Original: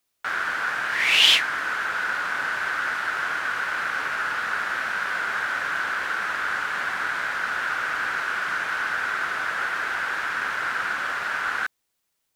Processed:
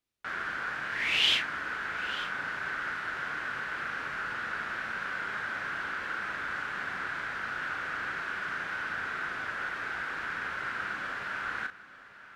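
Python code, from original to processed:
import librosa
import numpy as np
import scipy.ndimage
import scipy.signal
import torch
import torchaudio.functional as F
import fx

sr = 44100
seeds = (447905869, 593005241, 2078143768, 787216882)

p1 = fx.lowpass(x, sr, hz=1400.0, slope=6)
p2 = fx.peak_eq(p1, sr, hz=820.0, db=-9.0, octaves=2.4)
p3 = fx.doubler(p2, sr, ms=36.0, db=-7.5)
y = p3 + fx.echo_single(p3, sr, ms=893, db=-15.5, dry=0)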